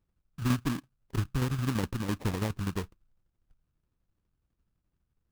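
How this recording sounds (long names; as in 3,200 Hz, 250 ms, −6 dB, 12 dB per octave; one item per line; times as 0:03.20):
tremolo saw down 12 Hz, depth 60%
phaser sweep stages 2, 2.9 Hz, lowest notch 770–2,000 Hz
aliases and images of a low sample rate 1,400 Hz, jitter 20%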